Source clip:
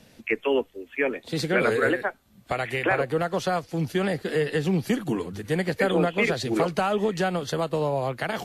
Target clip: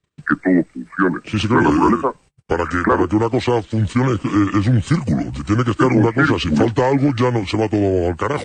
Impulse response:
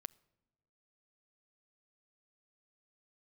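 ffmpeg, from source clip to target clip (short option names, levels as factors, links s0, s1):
-af "agate=range=0.0178:threshold=0.00355:ratio=16:detection=peak,acontrast=69,asetrate=29433,aresample=44100,atempo=1.49831,volume=1.33"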